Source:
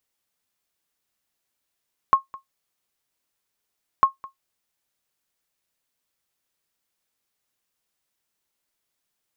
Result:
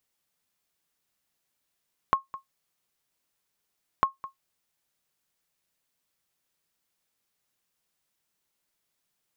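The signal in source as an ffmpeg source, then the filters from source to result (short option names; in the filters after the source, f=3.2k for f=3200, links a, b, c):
-f lavfi -i "aevalsrc='0.473*(sin(2*PI*1080*mod(t,1.9))*exp(-6.91*mod(t,1.9)/0.13)+0.0794*sin(2*PI*1080*max(mod(t,1.9)-0.21,0))*exp(-6.91*max(mod(t,1.9)-0.21,0)/0.13))':d=3.8:s=44100"
-af "equalizer=f=160:w=3:g=4.5,acompressor=threshold=-22dB:ratio=5"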